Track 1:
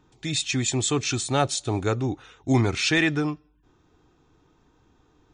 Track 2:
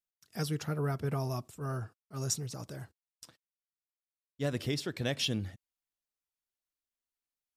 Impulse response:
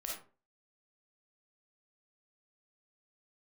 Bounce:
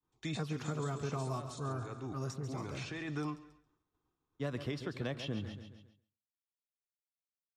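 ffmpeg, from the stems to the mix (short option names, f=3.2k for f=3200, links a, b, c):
-filter_complex "[0:a]alimiter=limit=-17.5dB:level=0:latency=1:release=24,volume=-8dB,asplit=3[a][b][c];[b]volume=-23dB[d];[c]volume=-24dB[e];[1:a]aemphasis=mode=reproduction:type=75kf,volume=-0.5dB,asplit=3[f][g][h];[g]volume=-12.5dB[i];[h]apad=whole_len=235491[j];[a][j]sidechaincompress=threshold=-49dB:ratio=4:attack=16:release=719[k];[2:a]atrim=start_sample=2205[l];[d][l]afir=irnorm=-1:irlink=0[m];[e][i]amix=inputs=2:normalize=0,aecho=0:1:137|274|411|548|685|822|959:1|0.48|0.23|0.111|0.0531|0.0255|0.0122[n];[k][f][m][n]amix=inputs=4:normalize=0,agate=range=-33dB:threshold=-57dB:ratio=3:detection=peak,equalizer=f=1.1k:w=3.9:g=7.5,acrossover=split=170|960|2500[o][p][q][r];[o]acompressor=threshold=-42dB:ratio=4[s];[p]acompressor=threshold=-37dB:ratio=4[t];[q]acompressor=threshold=-47dB:ratio=4[u];[r]acompressor=threshold=-50dB:ratio=4[v];[s][t][u][v]amix=inputs=4:normalize=0"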